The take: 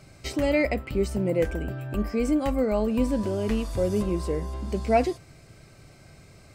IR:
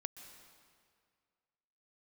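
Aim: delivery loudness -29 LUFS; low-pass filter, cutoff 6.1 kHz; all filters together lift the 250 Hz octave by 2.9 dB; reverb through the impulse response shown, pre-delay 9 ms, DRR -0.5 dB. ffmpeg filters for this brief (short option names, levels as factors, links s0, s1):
-filter_complex "[0:a]lowpass=6100,equalizer=f=250:t=o:g=3.5,asplit=2[s0][s1];[1:a]atrim=start_sample=2205,adelay=9[s2];[s1][s2]afir=irnorm=-1:irlink=0,volume=1.5[s3];[s0][s3]amix=inputs=2:normalize=0,volume=0.422"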